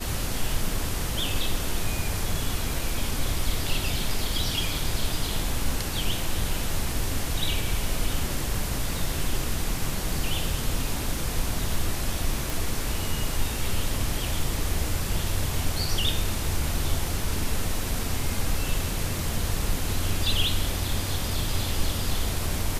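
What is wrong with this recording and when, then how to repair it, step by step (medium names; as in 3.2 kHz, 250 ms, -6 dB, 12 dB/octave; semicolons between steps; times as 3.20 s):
12.50 s: pop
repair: de-click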